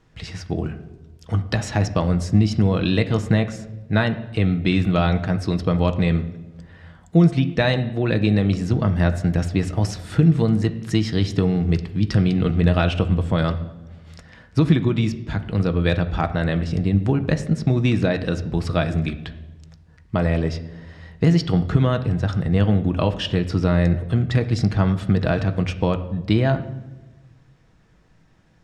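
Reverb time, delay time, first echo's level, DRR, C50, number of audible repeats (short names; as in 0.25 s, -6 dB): 1.1 s, none, none, 7.0 dB, 13.5 dB, none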